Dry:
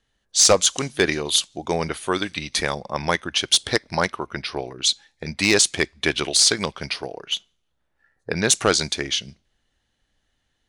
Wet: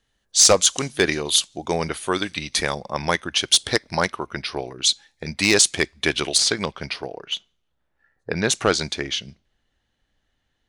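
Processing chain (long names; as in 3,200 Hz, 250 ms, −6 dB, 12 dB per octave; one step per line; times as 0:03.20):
high-shelf EQ 6,200 Hz +3 dB, from 0:06.38 −9.5 dB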